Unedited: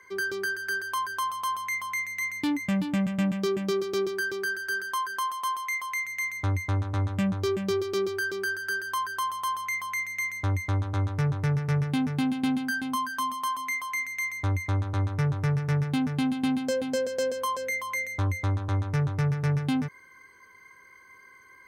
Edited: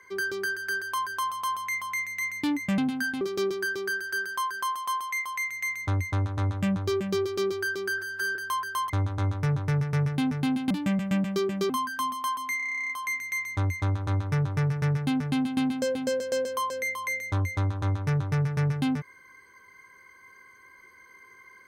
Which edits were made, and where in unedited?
2.78–3.77 s: swap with 12.46–12.89 s
8.54–8.79 s: stretch 1.5×
9.33–10.65 s: delete
13.76 s: stutter 0.03 s, 12 plays

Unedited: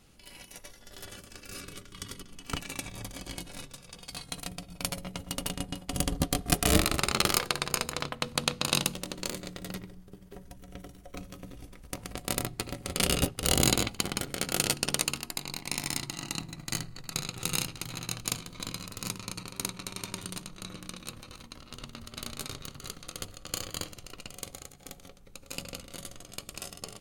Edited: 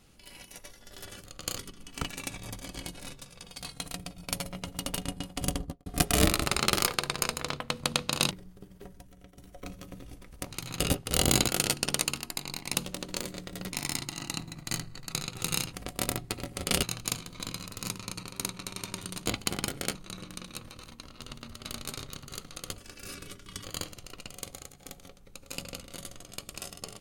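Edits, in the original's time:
1.24–2.10 s: swap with 23.30–23.64 s
5.96–6.38 s: studio fade out
8.83–9.82 s: move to 15.74 s
10.33–10.88 s: fade out, to -14.5 dB
12.02–13.12 s: swap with 17.74–18.03 s
13.80–14.48 s: move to 20.47 s

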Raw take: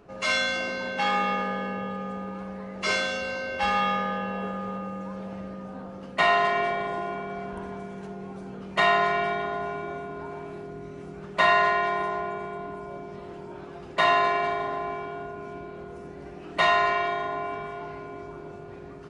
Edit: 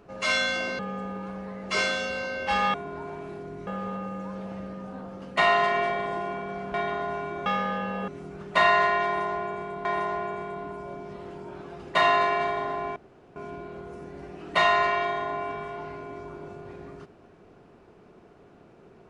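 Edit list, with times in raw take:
0.79–1.91 s: delete
3.86–4.48 s: swap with 9.98–10.91 s
7.55–9.26 s: delete
11.88–12.68 s: loop, 2 plays
14.99–15.39 s: room tone

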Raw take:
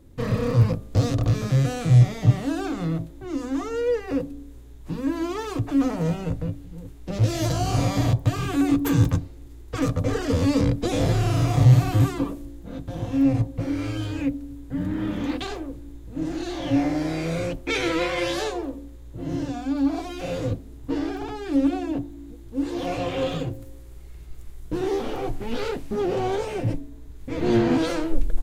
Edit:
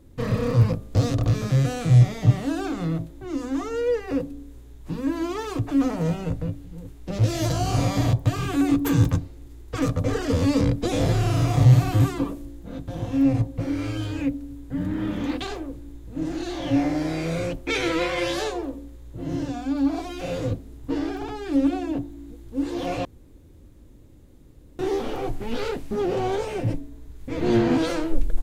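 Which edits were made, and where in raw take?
23.05–24.79 s: room tone

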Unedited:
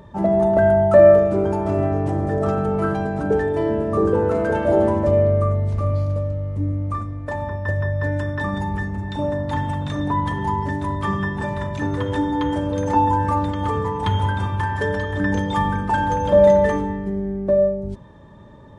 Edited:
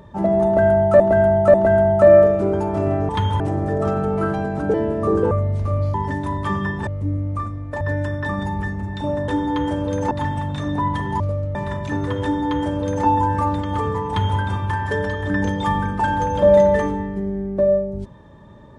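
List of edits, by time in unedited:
0.46–1.00 s: loop, 3 plays
3.35–3.64 s: delete
4.21–5.44 s: delete
6.07–6.42 s: swap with 10.52–11.45 s
7.36–7.96 s: delete
12.13–12.96 s: copy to 9.43 s
13.98–14.29 s: copy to 2.01 s

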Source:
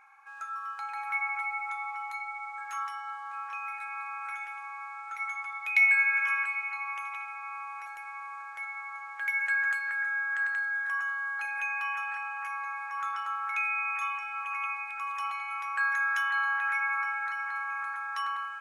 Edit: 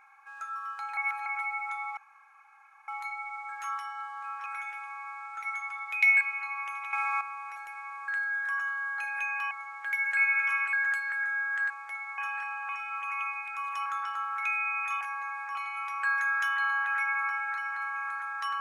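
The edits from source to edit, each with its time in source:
0.97–1.26 s: reverse
1.97 s: insert room tone 0.91 s
3.55–4.20 s: delete
5.95–6.51 s: move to 9.52 s
7.23–7.51 s: gain +10.5 dB
8.38–8.86 s: swap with 10.49–11.92 s
12.43–12.97 s: swap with 14.12–15.29 s

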